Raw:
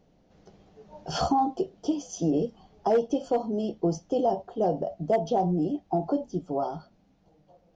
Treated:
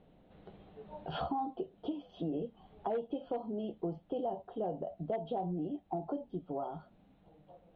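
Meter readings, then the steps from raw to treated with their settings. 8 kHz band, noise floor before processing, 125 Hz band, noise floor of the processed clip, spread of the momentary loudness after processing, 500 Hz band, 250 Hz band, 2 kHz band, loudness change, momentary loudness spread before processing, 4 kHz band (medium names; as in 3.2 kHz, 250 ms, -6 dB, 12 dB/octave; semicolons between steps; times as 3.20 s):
no reading, -64 dBFS, -10.5 dB, -65 dBFS, 12 LU, -11.0 dB, -10.5 dB, -9.5 dB, -11.0 dB, 7 LU, -11.5 dB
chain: Chebyshev low-pass 3.9 kHz, order 6; compression 2:1, threshold -44 dBFS, peak gain reduction 13 dB; trim +1 dB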